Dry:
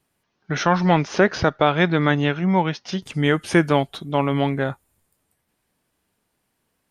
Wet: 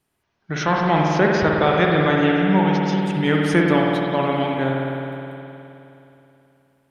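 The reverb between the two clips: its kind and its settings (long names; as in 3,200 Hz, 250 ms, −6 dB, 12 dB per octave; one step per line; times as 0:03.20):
spring reverb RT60 3 s, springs 52 ms, chirp 45 ms, DRR −2 dB
level −2.5 dB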